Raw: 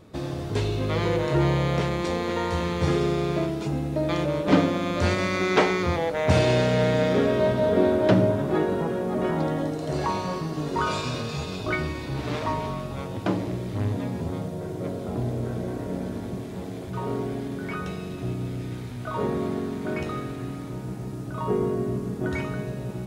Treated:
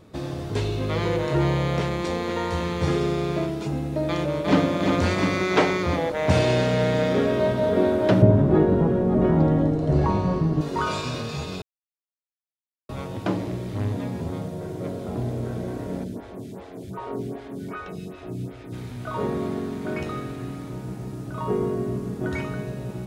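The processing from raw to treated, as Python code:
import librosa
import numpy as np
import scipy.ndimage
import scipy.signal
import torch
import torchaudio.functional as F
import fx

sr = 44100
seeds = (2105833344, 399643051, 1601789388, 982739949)

y = fx.echo_throw(x, sr, start_s=4.09, length_s=0.63, ms=350, feedback_pct=75, wet_db=-5.0)
y = fx.tilt_eq(y, sr, slope=-3.5, at=(8.22, 10.61))
y = fx.stagger_phaser(y, sr, hz=2.6, at=(16.03, 18.72), fade=0.02)
y = fx.edit(y, sr, fx.silence(start_s=11.62, length_s=1.27), tone=tone)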